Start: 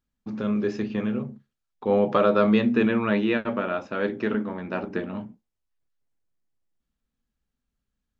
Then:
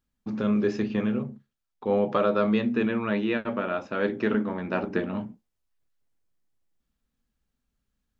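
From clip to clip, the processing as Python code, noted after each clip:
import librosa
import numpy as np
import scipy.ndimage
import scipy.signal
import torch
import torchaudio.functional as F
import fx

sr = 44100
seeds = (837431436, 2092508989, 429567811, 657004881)

y = fx.rider(x, sr, range_db=5, speed_s=2.0)
y = y * librosa.db_to_amplitude(-2.5)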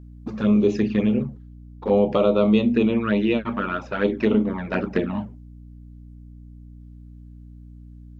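y = fx.env_flanger(x, sr, rest_ms=7.9, full_db=-21.5)
y = fx.add_hum(y, sr, base_hz=60, snr_db=19)
y = y * librosa.db_to_amplitude(6.5)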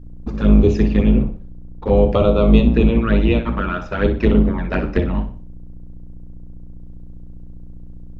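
y = fx.octave_divider(x, sr, octaves=2, level_db=3.0)
y = fx.echo_feedback(y, sr, ms=61, feedback_pct=35, wet_db=-11.5)
y = y * librosa.db_to_amplitude(2.5)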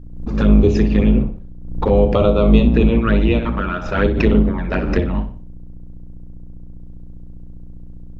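y = fx.pre_swell(x, sr, db_per_s=67.0)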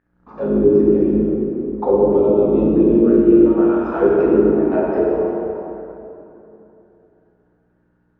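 y = fx.auto_wah(x, sr, base_hz=330.0, top_hz=1800.0, q=5.7, full_db=-10.5, direction='down')
y = fx.rev_plate(y, sr, seeds[0], rt60_s=3.1, hf_ratio=0.65, predelay_ms=0, drr_db=-6.5)
y = y * librosa.db_to_amplitude(4.5)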